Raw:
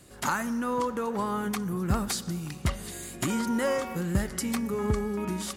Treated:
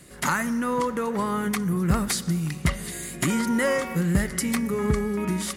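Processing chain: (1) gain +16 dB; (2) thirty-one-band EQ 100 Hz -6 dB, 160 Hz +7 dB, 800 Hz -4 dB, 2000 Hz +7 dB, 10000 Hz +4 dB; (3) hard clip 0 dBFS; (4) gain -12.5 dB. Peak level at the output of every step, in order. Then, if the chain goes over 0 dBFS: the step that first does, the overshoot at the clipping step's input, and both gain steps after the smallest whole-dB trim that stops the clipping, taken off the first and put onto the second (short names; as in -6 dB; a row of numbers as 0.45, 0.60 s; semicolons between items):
+2.0, +4.0, 0.0, -12.5 dBFS; step 1, 4.0 dB; step 1 +12 dB, step 4 -8.5 dB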